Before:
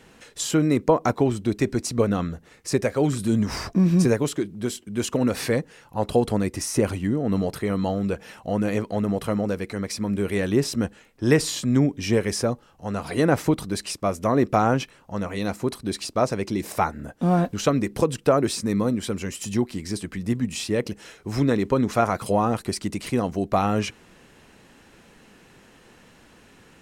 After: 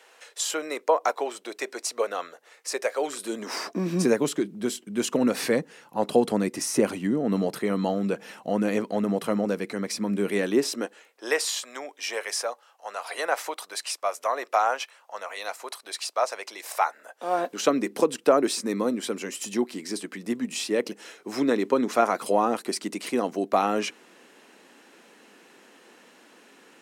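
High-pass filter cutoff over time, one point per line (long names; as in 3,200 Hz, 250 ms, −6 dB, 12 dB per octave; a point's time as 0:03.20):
high-pass filter 24 dB per octave
0:02.92 500 Hz
0:04.28 180 Hz
0:10.26 180 Hz
0:11.51 620 Hz
0:17.08 620 Hz
0:17.68 250 Hz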